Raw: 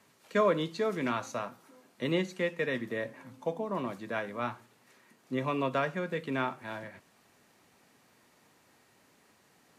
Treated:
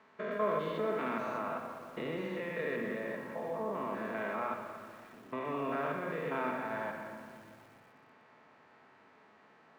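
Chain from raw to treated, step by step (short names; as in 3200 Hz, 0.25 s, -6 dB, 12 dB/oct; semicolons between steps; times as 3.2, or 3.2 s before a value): stepped spectrum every 0.2 s; LPF 1200 Hz 12 dB/oct; tilt shelf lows -7.5 dB, about 930 Hz; added harmonics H 3 -32 dB, 4 -26 dB, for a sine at -22 dBFS; HPF 160 Hz 6 dB/oct; notches 60/120/180/240 Hz; in parallel at -1 dB: negative-ratio compressor -48 dBFS, ratio -1; on the sum: reverb RT60 1.9 s, pre-delay 5 ms, DRR 3 dB; lo-fi delay 0.12 s, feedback 80%, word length 9-bit, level -14 dB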